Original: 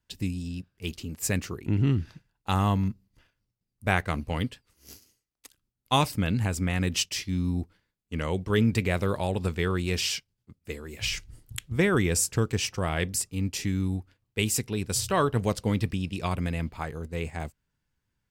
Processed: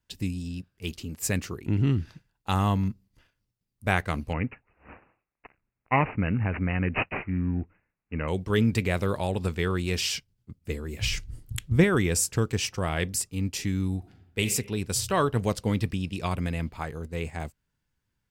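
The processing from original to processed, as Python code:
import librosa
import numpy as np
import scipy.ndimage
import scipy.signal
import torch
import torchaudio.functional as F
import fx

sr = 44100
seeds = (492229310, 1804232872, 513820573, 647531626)

y = fx.resample_bad(x, sr, factor=8, down='none', up='filtered', at=(4.33, 8.28))
y = fx.low_shelf(y, sr, hz=310.0, db=8.5, at=(10.14, 11.84))
y = fx.reverb_throw(y, sr, start_s=13.98, length_s=0.42, rt60_s=0.88, drr_db=3.5)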